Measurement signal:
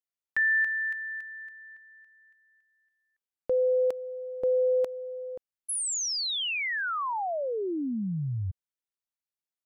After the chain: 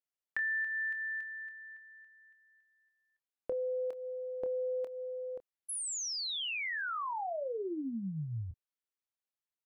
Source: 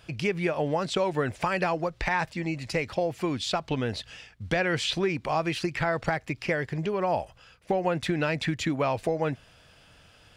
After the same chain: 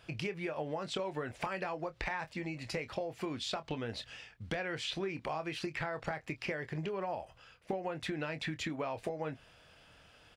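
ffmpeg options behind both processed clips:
-filter_complex "[0:a]bass=f=250:g=-4,treble=f=4000:g=-4,acompressor=threshold=0.0251:ratio=4:attack=17:release=379:knee=1:detection=peak,asplit=2[s0][s1];[s1]adelay=26,volume=0.282[s2];[s0][s2]amix=inputs=2:normalize=0,volume=0.668"

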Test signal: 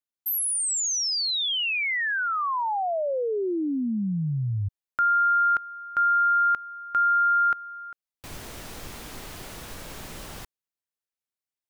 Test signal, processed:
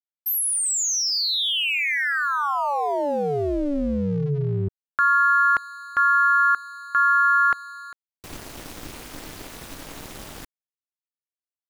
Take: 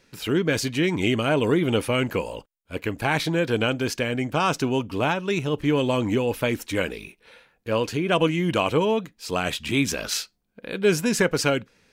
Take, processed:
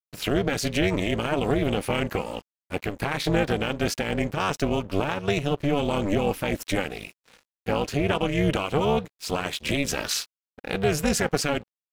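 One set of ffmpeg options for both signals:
-af "alimiter=limit=0.133:level=0:latency=1:release=194,aeval=exprs='sgn(val(0))*max(abs(val(0))-0.00376,0)':c=same,tremolo=f=290:d=0.947,volume=2.37"

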